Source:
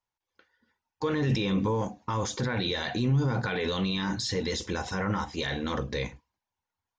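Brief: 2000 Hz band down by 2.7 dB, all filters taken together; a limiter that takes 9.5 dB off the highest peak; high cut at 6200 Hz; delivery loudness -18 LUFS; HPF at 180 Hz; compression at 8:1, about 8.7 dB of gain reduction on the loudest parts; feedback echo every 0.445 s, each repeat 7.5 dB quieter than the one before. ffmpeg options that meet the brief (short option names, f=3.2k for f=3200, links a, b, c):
-af "highpass=180,lowpass=6.2k,equalizer=f=2k:t=o:g=-3.5,acompressor=threshold=-34dB:ratio=8,alimiter=level_in=9dB:limit=-24dB:level=0:latency=1,volume=-9dB,aecho=1:1:445|890|1335|1780|2225:0.422|0.177|0.0744|0.0312|0.0131,volume=24dB"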